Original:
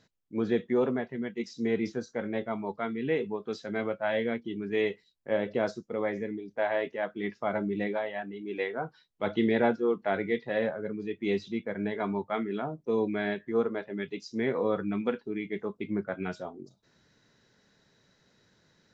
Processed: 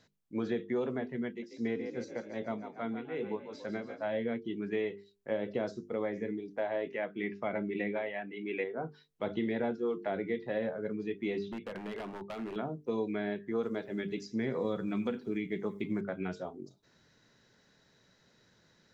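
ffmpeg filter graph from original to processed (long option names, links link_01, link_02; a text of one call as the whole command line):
ffmpeg -i in.wav -filter_complex "[0:a]asettb=1/sr,asplit=3[link_01][link_02][link_03];[link_01]atrim=end=1.284[link_04];[link_02]atrim=start=1.28:end=4.12,asetpts=PTS-STARTPTS,afade=type=in:duration=0.004:curve=qsin,afade=type=out:start_time=2.836:duration=0.004:curve=qsin,tremolo=f=2.5:d=0.86,asplit=7[link_05][link_06][link_07][link_08][link_09][link_10][link_11];[link_06]adelay=142,afreqshift=38,volume=-11dB[link_12];[link_07]adelay=284,afreqshift=76,volume=-16.5dB[link_13];[link_08]adelay=426,afreqshift=114,volume=-22dB[link_14];[link_09]adelay=568,afreqshift=152,volume=-27.5dB[link_15];[link_10]adelay=710,afreqshift=190,volume=-33.1dB[link_16];[link_11]adelay=852,afreqshift=228,volume=-38.6dB[link_17];[link_05][link_12][link_13][link_14][link_15][link_16][link_17]amix=inputs=7:normalize=0,atrim=end_sample=125244[link_18];[link_03]atrim=start=4.116[link_19];[link_04][link_18]acrossfade=duration=0.004:curve1=hsin:curve2=qsin[link_20];[link_20][link_19]acrossfade=duration=0.004:curve1=qsin:curve2=hsin,asettb=1/sr,asplit=3[link_21][link_22][link_23];[link_21]atrim=end=6.904[link_24];[link_22]atrim=start=6.9:end=8.64,asetpts=PTS-STARTPTS,afade=type=in:duration=0.004:curve=qsin,afade=type=out:start_time=1.736:duration=0.004:curve=qsin,highpass=48,equalizer=frequency=2300:width_type=o:width=1:gain=13[link_25];[link_23]atrim=start=8.636[link_26];[link_24][link_25]acrossfade=duration=0.004:curve1=hsin:curve2=qsin[link_27];[link_27][link_26]acrossfade=duration=0.004:curve1=qsin:curve2=hsin,asettb=1/sr,asplit=3[link_28][link_29][link_30];[link_28]atrim=end=11.394[link_31];[link_29]atrim=start=11.39:end=12.56,asetpts=PTS-STARTPTS,afade=type=in:duration=0.004:curve=qsin,afade=type=out:start_time=1.166:duration=0.004:curve=qsin,lowpass=4900,acompressor=threshold=-32dB:ratio=8:attack=3.2:release=140:knee=1:detection=peak,aeval=exprs='0.0237*(abs(mod(val(0)/0.0237+3,4)-2)-1)':channel_layout=same[link_32];[link_30]atrim=start=12.556[link_33];[link_31][link_32]acrossfade=duration=0.004:curve1=hsin:curve2=qsin[link_34];[link_34][link_33]acrossfade=duration=0.004:curve1=qsin:curve2=hsin,asettb=1/sr,asplit=3[link_35][link_36][link_37];[link_35]atrim=end=13.634[link_38];[link_36]atrim=start=13.63:end=16.01,asetpts=PTS-STARTPTS,afade=type=in:duration=0.004:curve=qsin,afade=type=out:start_time=2.376:duration=0.004:curve=qsin,bass=frequency=250:gain=6,treble=frequency=4000:gain=13,aecho=1:1:89|178|267:0.0631|0.0303|0.0145,atrim=end_sample=104958[link_39];[link_37]atrim=start=16.006[link_40];[link_38][link_39]acrossfade=duration=0.004:curve1=hsin:curve2=qsin[link_41];[link_41][link_40]acrossfade=duration=0.004:curve1=qsin:curve2=hsin,bandreject=frequency=50:width_type=h:width=6,bandreject=frequency=100:width_type=h:width=6,bandreject=frequency=150:width_type=h:width=6,bandreject=frequency=200:width_type=h:width=6,bandreject=frequency=250:width_type=h:width=6,bandreject=frequency=300:width_type=h:width=6,bandreject=frequency=350:width_type=h:width=6,bandreject=frequency=400:width_type=h:width=6,bandreject=frequency=450:width_type=h:width=6,acrossover=split=610|2500[link_42][link_43][link_44];[link_42]acompressor=threshold=-31dB:ratio=4[link_45];[link_43]acompressor=threshold=-43dB:ratio=4[link_46];[link_44]acompressor=threshold=-54dB:ratio=4[link_47];[link_45][link_46][link_47]amix=inputs=3:normalize=0" out.wav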